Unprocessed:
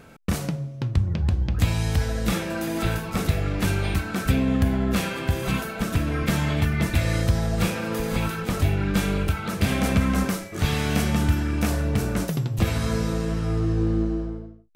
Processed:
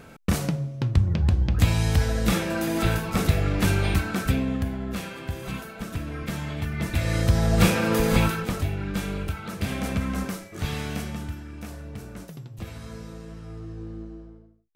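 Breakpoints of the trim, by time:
4.05 s +1.5 dB
4.75 s -8 dB
6.58 s -8 dB
7.63 s +5 dB
8.20 s +5 dB
8.68 s -6 dB
10.80 s -6 dB
11.42 s -14.5 dB

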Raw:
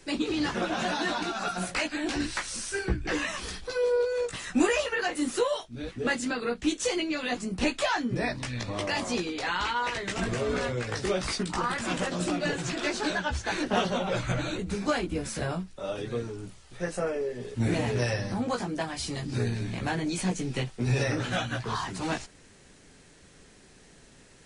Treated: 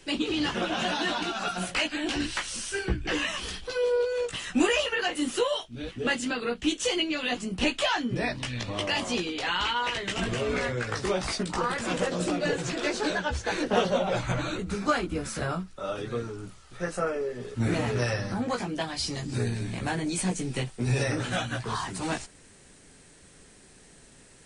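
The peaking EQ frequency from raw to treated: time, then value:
peaking EQ +8.5 dB 0.34 oct
10.38 s 3 kHz
11.56 s 480 Hz
13.84 s 480 Hz
14.54 s 1.3 kHz
18.29 s 1.3 kHz
19.36 s 8.7 kHz

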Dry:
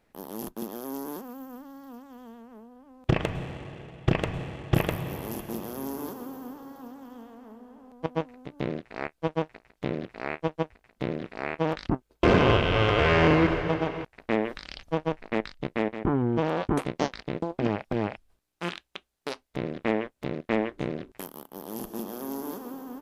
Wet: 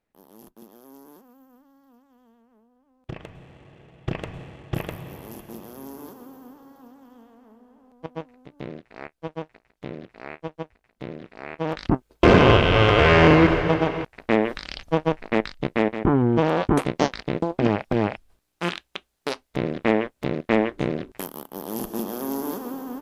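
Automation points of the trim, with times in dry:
3.39 s -12.5 dB
4.02 s -5 dB
11.46 s -5 dB
11.92 s +6 dB

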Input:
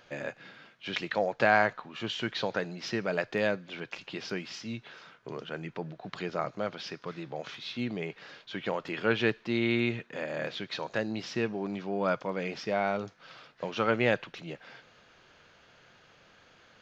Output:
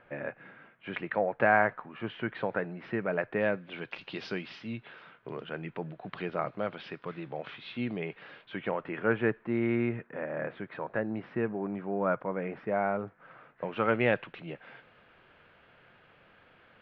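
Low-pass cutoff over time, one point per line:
low-pass 24 dB/octave
3.33 s 2.2 kHz
4.21 s 4.7 kHz
4.71 s 3.1 kHz
8.35 s 3.1 kHz
9.15 s 1.9 kHz
13.38 s 1.9 kHz
13.98 s 2.9 kHz

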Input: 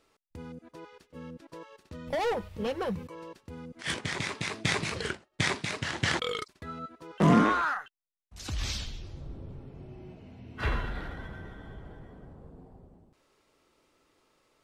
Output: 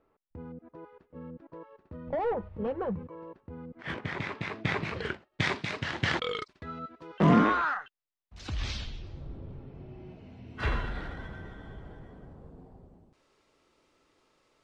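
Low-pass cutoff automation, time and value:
3.45 s 1.2 kHz
4.21 s 2.3 kHz
4.79 s 2.3 kHz
5.49 s 4 kHz
9.92 s 4 kHz
10.51 s 8.1 kHz

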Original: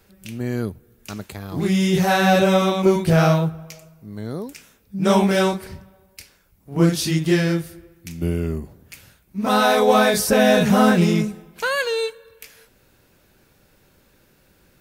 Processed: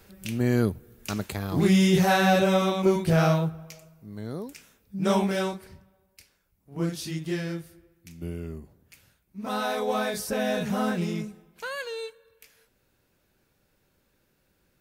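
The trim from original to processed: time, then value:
1.44 s +2 dB
2.40 s -5.5 dB
4.99 s -5.5 dB
5.70 s -12 dB

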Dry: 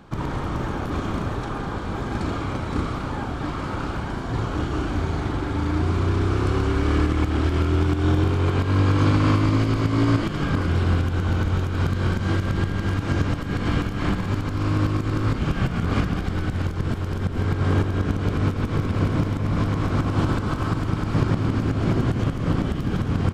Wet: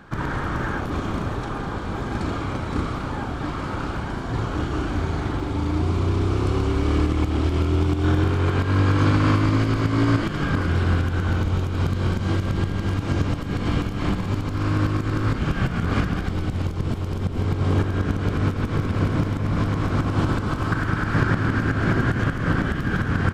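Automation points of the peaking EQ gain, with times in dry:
peaking EQ 1.6 kHz 0.59 oct
+9.5 dB
from 0.80 s +1 dB
from 5.40 s -5.5 dB
from 8.04 s +3.5 dB
from 11.39 s -3.5 dB
from 14.54 s +3 dB
from 16.30 s -5.5 dB
from 17.79 s +2 dB
from 20.72 s +13.5 dB

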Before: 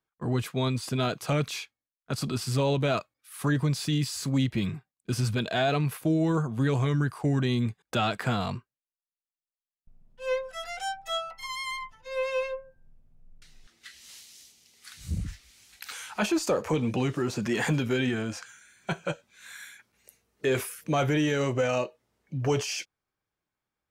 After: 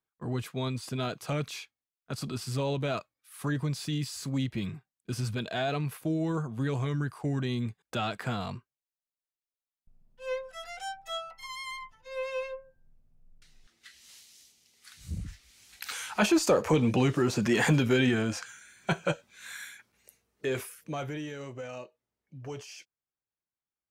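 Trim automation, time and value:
15.30 s -5 dB
15.87 s +2.5 dB
19.53 s +2.5 dB
20.68 s -6.5 dB
21.38 s -14 dB

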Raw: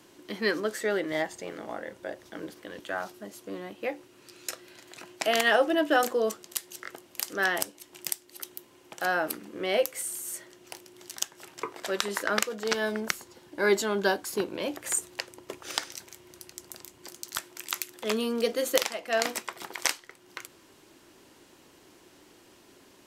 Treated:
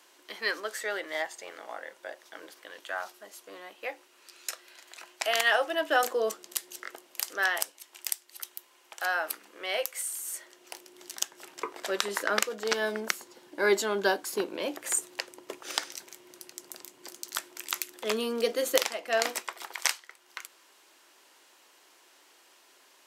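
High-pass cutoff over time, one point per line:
5.69 s 700 Hz
6.54 s 270 Hz
7.67 s 780 Hz
10.12 s 780 Hz
11.07 s 270 Hz
19.12 s 270 Hz
19.79 s 730 Hz

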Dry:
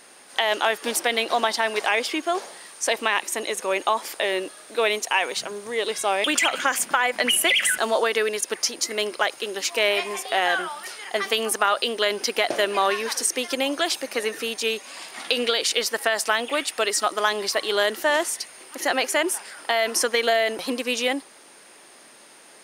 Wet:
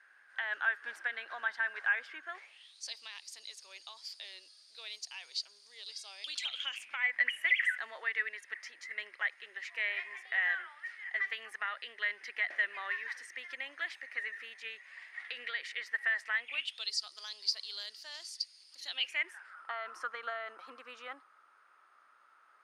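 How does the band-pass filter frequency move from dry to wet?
band-pass filter, Q 9.6
2.25 s 1.6 kHz
2.86 s 4.7 kHz
6.24 s 4.7 kHz
7.13 s 1.9 kHz
16.37 s 1.9 kHz
16.95 s 4.7 kHz
18.75 s 4.7 kHz
19.51 s 1.3 kHz

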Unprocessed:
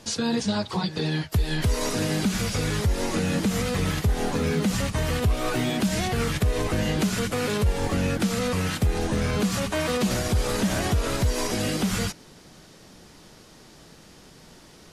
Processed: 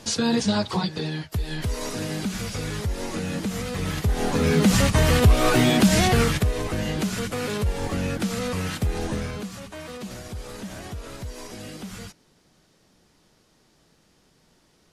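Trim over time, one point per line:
0.72 s +3 dB
1.15 s -4 dB
3.71 s -4 dB
4.75 s +7 dB
6.15 s +7 dB
6.57 s -2 dB
9.12 s -2 dB
9.53 s -12 dB

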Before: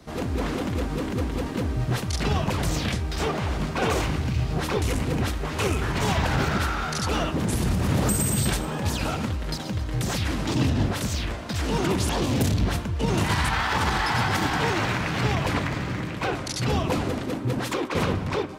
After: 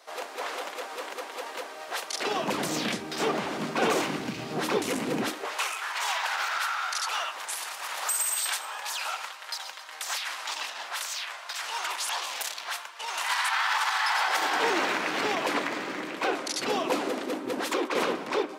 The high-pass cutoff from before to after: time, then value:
high-pass 24 dB/octave
2.04 s 560 Hz
2.53 s 210 Hz
5.24 s 210 Hz
5.65 s 850 Hz
14.07 s 850 Hz
14.70 s 290 Hz

